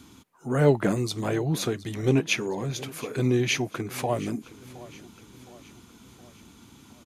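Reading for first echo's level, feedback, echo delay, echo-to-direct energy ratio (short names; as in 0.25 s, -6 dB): -19.0 dB, 52%, 0.716 s, -17.5 dB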